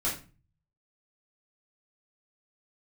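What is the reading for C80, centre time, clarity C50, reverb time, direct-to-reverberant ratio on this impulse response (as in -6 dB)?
12.5 dB, 28 ms, 7.0 dB, 0.35 s, -8.0 dB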